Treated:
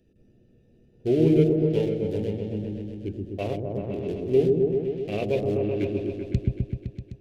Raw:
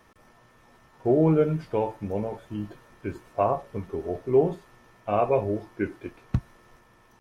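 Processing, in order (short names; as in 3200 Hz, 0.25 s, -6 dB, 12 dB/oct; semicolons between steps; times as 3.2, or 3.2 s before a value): Wiener smoothing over 41 samples; EQ curve 440 Hz 0 dB, 1100 Hz -22 dB, 2800 Hz +9 dB; repeats that get brighter 0.128 s, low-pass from 400 Hz, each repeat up 1 oct, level 0 dB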